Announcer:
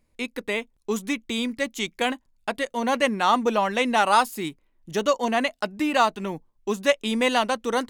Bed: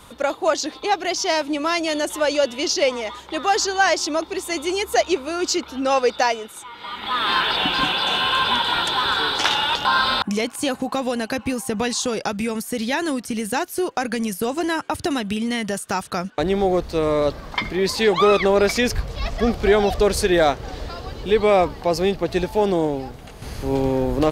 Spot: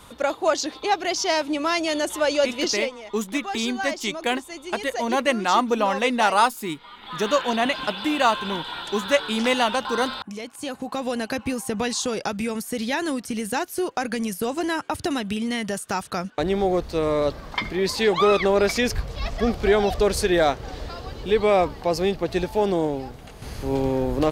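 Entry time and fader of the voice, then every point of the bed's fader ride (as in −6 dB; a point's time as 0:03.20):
2.25 s, +0.5 dB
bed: 0:02.67 −1.5 dB
0:02.91 −12 dB
0:10.40 −12 dB
0:11.14 −2.5 dB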